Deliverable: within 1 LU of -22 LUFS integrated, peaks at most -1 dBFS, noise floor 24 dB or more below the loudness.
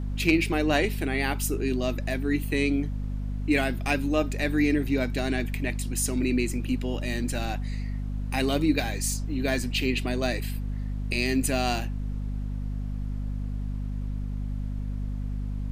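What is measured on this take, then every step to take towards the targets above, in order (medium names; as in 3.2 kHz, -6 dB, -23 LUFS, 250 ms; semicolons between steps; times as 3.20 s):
hum 50 Hz; highest harmonic 250 Hz; hum level -28 dBFS; noise floor -32 dBFS; noise floor target -52 dBFS; loudness -28.0 LUFS; peak level -9.0 dBFS; loudness target -22.0 LUFS
-> de-hum 50 Hz, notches 5; noise reduction 20 dB, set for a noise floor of -32 dBFS; trim +6 dB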